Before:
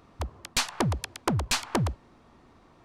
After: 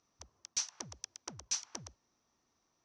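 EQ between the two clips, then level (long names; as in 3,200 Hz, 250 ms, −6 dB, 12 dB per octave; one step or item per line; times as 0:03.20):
resonant band-pass 5,900 Hz, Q 11
spectral tilt −4.5 dB per octave
+14.5 dB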